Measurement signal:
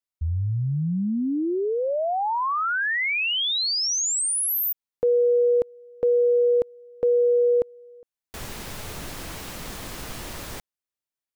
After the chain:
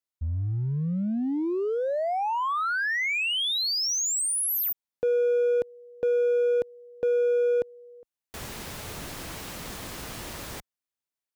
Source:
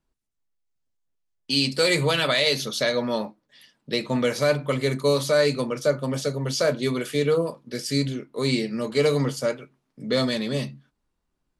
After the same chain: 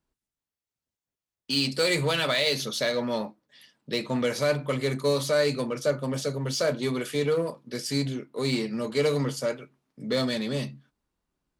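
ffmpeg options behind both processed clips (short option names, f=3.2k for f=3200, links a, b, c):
-filter_complex "[0:a]asplit=2[a][b];[b]aeval=exprs='0.0531*(abs(mod(val(0)/0.0531+3,4)-2)-1)':c=same,volume=-12dB[c];[a][c]amix=inputs=2:normalize=0,highpass=f=43:p=1,volume=-3.5dB"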